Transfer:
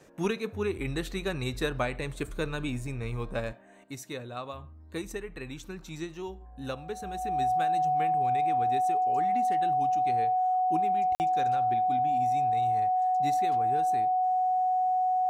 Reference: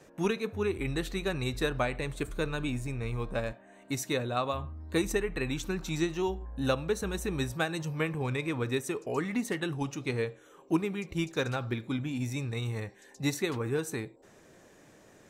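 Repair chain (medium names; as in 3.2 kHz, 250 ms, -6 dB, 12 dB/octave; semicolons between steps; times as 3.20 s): band-stop 740 Hz, Q 30; interpolate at 11.15 s, 49 ms; gain correction +7.5 dB, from 3.84 s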